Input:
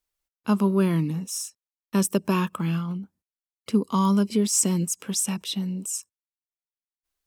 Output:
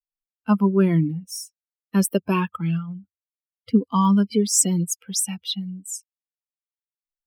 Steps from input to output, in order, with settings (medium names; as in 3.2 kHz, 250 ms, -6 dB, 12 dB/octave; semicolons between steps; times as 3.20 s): expander on every frequency bin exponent 2; trim +6 dB